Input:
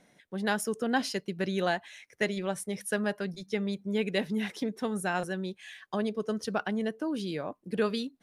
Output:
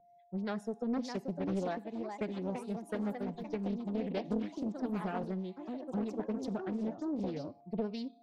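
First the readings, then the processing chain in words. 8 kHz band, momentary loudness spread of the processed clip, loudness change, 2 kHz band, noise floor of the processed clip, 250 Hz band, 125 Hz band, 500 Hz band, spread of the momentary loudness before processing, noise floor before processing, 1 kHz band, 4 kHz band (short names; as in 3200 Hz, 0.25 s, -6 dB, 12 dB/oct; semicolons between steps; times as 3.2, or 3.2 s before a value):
under -15 dB, 4 LU, -5.5 dB, -16.0 dB, -62 dBFS, -3.0 dB, -3.0 dB, -6.5 dB, 6 LU, -66 dBFS, -7.5 dB, -14.5 dB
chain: per-bin expansion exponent 1.5; bell 1500 Hz -9.5 dB 1.7 oct; notch 3000 Hz, Q 9.1; compressor, threshold -33 dBFS, peak gain reduction 8 dB; whine 700 Hz -61 dBFS; harmonic tremolo 3.2 Hz, depth 50%, crossover 450 Hz; Schroeder reverb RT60 0.59 s, combs from 27 ms, DRR 19.5 dB; echoes that change speed 0.687 s, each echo +3 st, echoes 3, each echo -6 dB; tape spacing loss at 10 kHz 22 dB; Doppler distortion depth 0.67 ms; gain +4.5 dB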